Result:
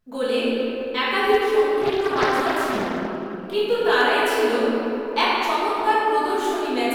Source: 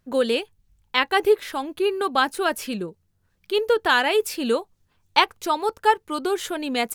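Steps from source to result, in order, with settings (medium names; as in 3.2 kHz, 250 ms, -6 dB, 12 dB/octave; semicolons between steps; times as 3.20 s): reverberation RT60 3.3 s, pre-delay 5 ms, DRR -10.5 dB; short-mantissa float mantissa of 6-bit; 1.81–3.54 s: loudspeaker Doppler distortion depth 0.47 ms; trim -9 dB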